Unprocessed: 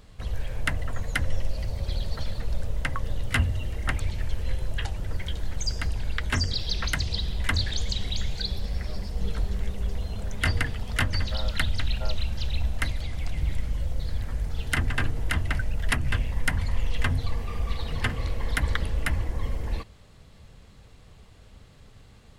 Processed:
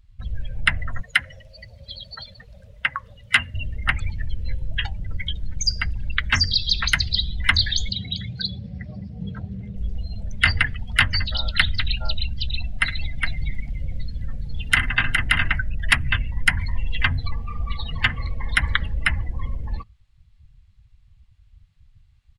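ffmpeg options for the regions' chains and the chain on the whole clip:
ffmpeg -i in.wav -filter_complex "[0:a]asettb=1/sr,asplit=3[link_01][link_02][link_03];[link_01]atrim=end=1.014[link_04];[link_02]atrim=start=1.01:end=3.54,asetpts=PTS-STARTPTS,afade=type=in:duration=0.004:curve=qsin,afade=type=out:start_time=2.526:duration=0.004:curve=qsin,highpass=frequency=200:poles=1,lowshelf=frequency=260:gain=-6[link_05];[link_03]atrim=start=3.536[link_06];[link_04][link_05]acrossfade=duration=0.004:curve1=hsin:curve2=qsin[link_07];[link_07][link_06]acrossfade=duration=0.004:curve1=qsin:curve2=hsin,asettb=1/sr,asplit=3[link_08][link_09][link_10];[link_08]atrim=end=7.894[link_11];[link_09]atrim=start=7.89:end=9.76,asetpts=PTS-STARTPTS,afade=type=in:duration=0.004:curve=qsin,afade=type=out:start_time=1.866:duration=0.004:curve=qsin,highpass=frequency=120:width=0.5412,highpass=frequency=120:width=1.3066,aemphasis=mode=reproduction:type=bsi[link_12];[link_10]atrim=start=9.756[link_13];[link_11][link_12]acrossfade=duration=0.004:curve1=hsin:curve2=qsin[link_14];[link_14][link_13]acrossfade=duration=0.004:curve1=qsin:curve2=hsin,asettb=1/sr,asplit=3[link_15][link_16][link_17];[link_15]atrim=end=12.544[link_18];[link_16]atrim=start=12.54:end=15.51,asetpts=PTS-STARTPTS,afade=type=in:duration=0.004:curve=qsin,afade=type=out:start_time=2.966:duration=0.004:curve=qsin,equalizer=frequency=68:width_type=o:width=1:gain=-5.5,aecho=1:1:62|108|413:0.335|0.112|0.668,atrim=end_sample=130977[link_19];[link_17]atrim=start=15.506[link_20];[link_18][link_19]acrossfade=duration=0.004:curve1=hsin:curve2=qsin[link_21];[link_21][link_20]acrossfade=duration=0.004:curve1=qsin:curve2=hsin,afftdn=noise_reduction=26:noise_floor=-36,firequalizer=gain_entry='entry(170,0);entry(410,-11);entry(820,3);entry(2300,11);entry(7600,6)':delay=0.05:min_phase=1,volume=1.5dB" out.wav

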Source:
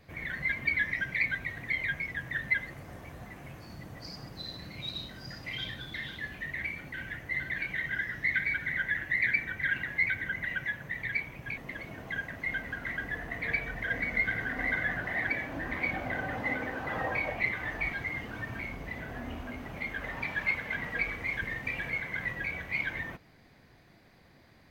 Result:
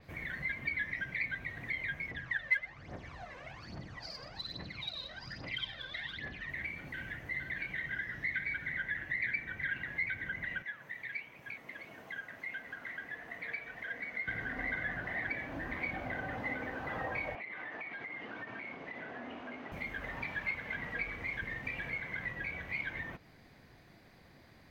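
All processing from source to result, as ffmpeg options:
ffmpeg -i in.wav -filter_complex "[0:a]asettb=1/sr,asplit=3[link_01][link_02][link_03];[link_01]atrim=end=2.114[link_04];[link_02]atrim=start=2.11:end=6.49,asetpts=PTS-STARTPTS,afade=type=in:duration=0.004:curve=qsin,afade=type=out:start_time=4.376:duration=0.004:curve=qsin,lowpass=frequency=5700:width=0.5412,lowpass=frequency=5700:width=1.3066,lowshelf=frequency=290:gain=-10,aphaser=in_gain=1:out_gain=1:delay=2:decay=0.71:speed=1.2:type=triangular[link_05];[link_03]atrim=start=6.486[link_06];[link_04][link_05]acrossfade=duration=0.004:curve1=hsin:curve2=qsin[link_07];[link_07][link_06]acrossfade=duration=0.004:curve1=qsin:curve2=hsin,asettb=1/sr,asplit=3[link_08][link_09][link_10];[link_08]atrim=end=10.624[link_11];[link_09]atrim=start=10.62:end=14.28,asetpts=PTS-STARTPTS,afade=type=in:duration=0.004:curve=qsin,afade=type=out:start_time=3.656:duration=0.004:curve=qsin,highpass=frequency=420:poles=1,flanger=delay=4.1:depth=5.5:regen=90:speed=1.5:shape=sinusoidal[link_12];[link_10]atrim=start=14.276[link_13];[link_11][link_12]acrossfade=duration=0.004:curve1=hsin:curve2=qsin[link_14];[link_14][link_13]acrossfade=duration=0.004:curve1=qsin:curve2=hsin,asettb=1/sr,asplit=3[link_15][link_16][link_17];[link_15]atrim=end=17.354[link_18];[link_16]atrim=start=17.35:end=19.72,asetpts=PTS-STARTPTS,afade=type=in:duration=0.004:curve=qsin,afade=type=out:start_time=2.366:duration=0.004:curve=qsin,highpass=270,lowpass=3700,acompressor=threshold=-37dB:ratio=10:attack=3.2:release=140:knee=1:detection=peak[link_19];[link_17]atrim=start=19.716[link_20];[link_18][link_19]acrossfade=duration=0.004:curve1=hsin:curve2=qsin[link_21];[link_21][link_20]acrossfade=duration=0.004:curve1=qsin:curve2=hsin,acompressor=threshold=-44dB:ratio=1.5,adynamicequalizer=threshold=0.00158:dfrequency=6000:dqfactor=0.7:tfrequency=6000:tqfactor=0.7:attack=5:release=100:ratio=0.375:range=3.5:mode=cutabove:tftype=highshelf" out.wav

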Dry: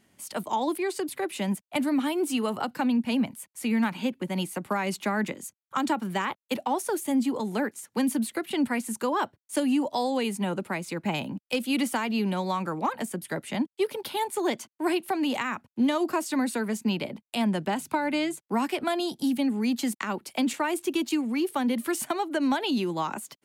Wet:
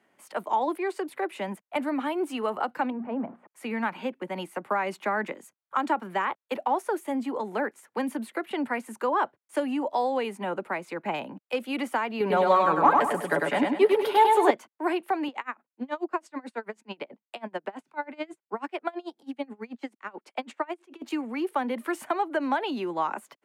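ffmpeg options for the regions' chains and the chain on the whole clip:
ffmpeg -i in.wav -filter_complex "[0:a]asettb=1/sr,asplit=3[link_01][link_02][link_03];[link_01]atrim=end=2.904[link_04];[link_02]atrim=start=2.9:end=3.47,asetpts=PTS-STARTPTS,afade=type=in:duration=0.004:curve=qsin,afade=type=out:start_time=0.566:duration=0.004:curve=qsin,aeval=exprs='val(0)+0.5*0.00891*sgn(val(0))':channel_layout=same,lowpass=1000,bandreject=frequency=60:width_type=h:width=6,bandreject=frequency=120:width_type=h:width=6,bandreject=frequency=180:width_type=h:width=6,bandreject=frequency=240:width_type=h:width=6,bandreject=frequency=300:width_type=h:width=6,bandreject=frequency=360:width_type=h:width=6[link_05];[link_03]atrim=start=3.466[link_06];[link_04][link_05]acrossfade=duration=0.004:curve1=hsin:curve2=qsin[link_07];[link_07][link_06]acrossfade=duration=0.004:curve1=qsin:curve2=hsin,asettb=1/sr,asplit=3[link_08][link_09][link_10];[link_08]atrim=end=12.204[link_11];[link_09]atrim=start=12.2:end=14.51,asetpts=PTS-STARTPTS,afade=type=in:duration=0.004:curve=qsin,afade=type=out:start_time=2.306:duration=0.004:curve=qsin,aecho=1:1:7:0.5,atrim=end_sample=101871,acontrast=39,aecho=1:1:100|200|300|400|500:0.708|0.269|0.102|0.0388|0.0148,atrim=end_sample=101871[link_12];[link_10]atrim=start=14.506[link_13];[link_11][link_12]acrossfade=duration=0.004:curve1=hsin:curve2=qsin[link_14];[link_14][link_13]acrossfade=duration=0.004:curve1=qsin:curve2=hsin,asettb=1/sr,asplit=3[link_15][link_16][link_17];[link_15]atrim=end=15.284[link_18];[link_16]atrim=start=15.28:end=21.02,asetpts=PTS-STARTPTS,afade=type=in:duration=0.004:curve=qsin,afade=type=out:start_time=5.736:duration=0.004:curve=qsin,highpass=190,lowpass=7900,aeval=exprs='val(0)*pow(10,-29*(0.5-0.5*cos(2*PI*9.2*n/s))/20)':channel_layout=same[link_19];[link_17]atrim=start=21.016[link_20];[link_18][link_19]acrossfade=duration=0.004:curve1=hsin:curve2=qsin[link_21];[link_21][link_20]acrossfade=duration=0.004:curve1=qsin:curve2=hsin,highpass=130,acrossover=split=360 2300:gain=0.2 1 0.158[link_22][link_23][link_24];[link_22][link_23][link_24]amix=inputs=3:normalize=0,volume=3dB" out.wav

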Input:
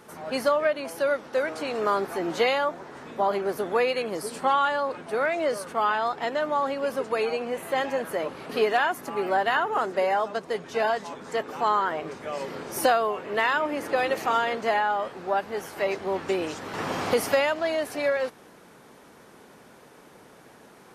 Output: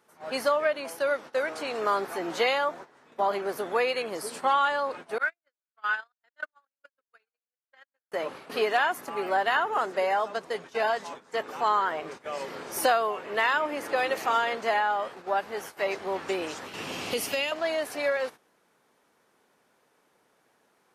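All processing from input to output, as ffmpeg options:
ffmpeg -i in.wav -filter_complex "[0:a]asettb=1/sr,asplit=3[link_01][link_02][link_03];[link_01]atrim=end=5.184[link_04];[link_02]atrim=start=5.18:end=8.12,asetpts=PTS-STARTPTS,afade=type=in:duration=0.004:curve=qsin,afade=type=out:start_time=2.936:duration=0.004:curve=qsin,equalizer=frequency=1500:width=3.4:gain=12.5,acrossover=split=1600|5600[link_05][link_06][link_07];[link_05]acompressor=threshold=-33dB:ratio=4[link_08];[link_06]acompressor=threshold=-27dB:ratio=4[link_09];[link_07]acompressor=threshold=-56dB:ratio=4[link_10];[link_08][link_09][link_10]amix=inputs=3:normalize=0,agate=range=-56dB:threshold=-27dB:ratio=16:release=100:detection=peak[link_11];[link_03]atrim=start=8.116[link_12];[link_04][link_11]acrossfade=duration=0.004:curve1=hsin:curve2=qsin[link_13];[link_13][link_12]acrossfade=duration=0.004:curve1=qsin:curve2=hsin,asettb=1/sr,asplit=3[link_14][link_15][link_16];[link_14]atrim=end=16.664[link_17];[link_15]atrim=start=16.66:end=17.52,asetpts=PTS-STARTPTS,afade=type=in:duration=0.004:curve=qsin,afade=type=out:start_time=0.856:duration=0.004:curve=qsin,equalizer=frequency=2700:width_type=o:width=0.47:gain=9.5,acrossover=split=450|3000[link_18][link_19][link_20];[link_19]acompressor=threshold=-56dB:ratio=1.5:attack=3.2:release=140:knee=2.83:detection=peak[link_21];[link_18][link_21][link_20]amix=inputs=3:normalize=0[link_22];[link_16]atrim=start=17.516[link_23];[link_17][link_22]acrossfade=duration=0.004:curve1=hsin:curve2=qsin[link_24];[link_24][link_23]acrossfade=duration=0.004:curve1=qsin:curve2=hsin,agate=range=-14dB:threshold=-38dB:ratio=16:detection=peak,lowshelf=frequency=330:gain=-9.5" out.wav

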